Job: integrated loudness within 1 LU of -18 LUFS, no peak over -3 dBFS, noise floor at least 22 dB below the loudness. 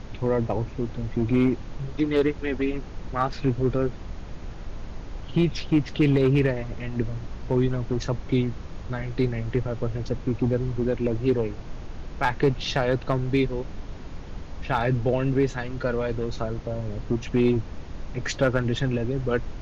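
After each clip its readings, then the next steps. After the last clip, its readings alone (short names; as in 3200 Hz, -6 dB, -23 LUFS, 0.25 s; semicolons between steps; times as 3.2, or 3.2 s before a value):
clipped 0.3%; flat tops at -13.0 dBFS; noise floor -38 dBFS; noise floor target -48 dBFS; loudness -26.0 LUFS; peak -13.0 dBFS; loudness target -18.0 LUFS
-> clip repair -13 dBFS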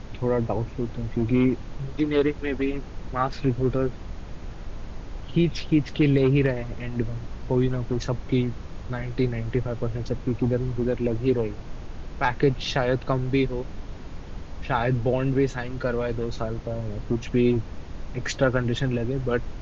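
clipped 0.0%; noise floor -38 dBFS; noise floor target -48 dBFS
-> noise print and reduce 10 dB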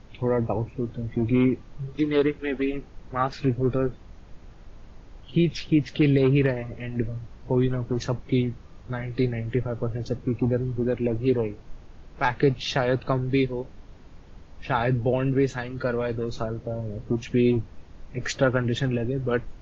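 noise floor -47 dBFS; noise floor target -48 dBFS
-> noise print and reduce 6 dB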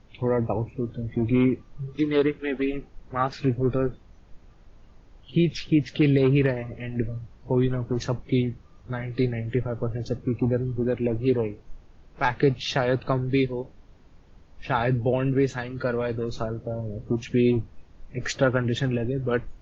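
noise floor -53 dBFS; loudness -26.0 LUFS; peak -8.5 dBFS; loudness target -18.0 LUFS
-> gain +8 dB; limiter -3 dBFS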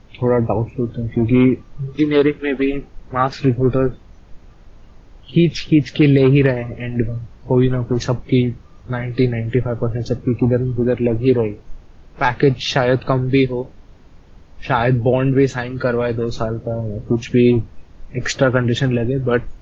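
loudness -18.0 LUFS; peak -3.0 dBFS; noise floor -45 dBFS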